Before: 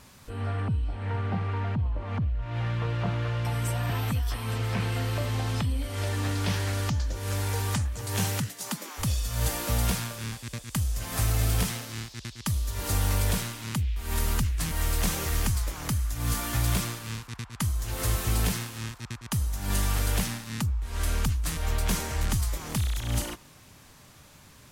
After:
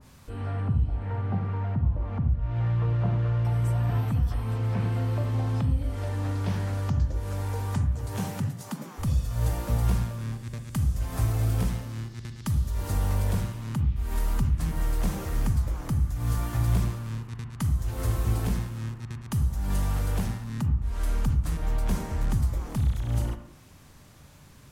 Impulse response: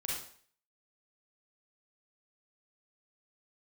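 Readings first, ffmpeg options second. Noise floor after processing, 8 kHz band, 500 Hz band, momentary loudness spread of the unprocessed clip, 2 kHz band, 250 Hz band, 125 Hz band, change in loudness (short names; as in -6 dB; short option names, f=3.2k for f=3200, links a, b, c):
-50 dBFS, -10.5 dB, -1.5 dB, 6 LU, -7.5 dB, +1.0 dB, +2.5 dB, +1.0 dB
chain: -filter_complex "[0:a]asplit=2[a][b];[1:a]atrim=start_sample=2205,lowpass=2.3k,lowshelf=f=480:g=10.5[c];[b][c]afir=irnorm=-1:irlink=0,volume=-9dB[d];[a][d]amix=inputs=2:normalize=0,adynamicequalizer=threshold=0.00355:dfrequency=1600:dqfactor=0.7:tfrequency=1600:tqfactor=0.7:attack=5:release=100:ratio=0.375:range=4:mode=cutabove:tftype=highshelf,volume=-3.5dB"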